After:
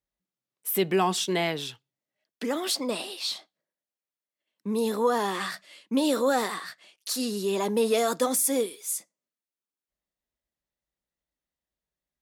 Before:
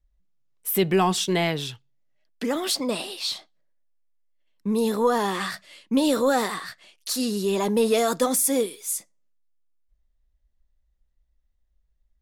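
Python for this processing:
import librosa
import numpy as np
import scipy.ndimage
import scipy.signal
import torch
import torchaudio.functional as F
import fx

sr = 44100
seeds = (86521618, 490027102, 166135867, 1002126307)

y = scipy.signal.sosfilt(scipy.signal.butter(2, 200.0, 'highpass', fs=sr, output='sos'), x)
y = y * 10.0 ** (-2.5 / 20.0)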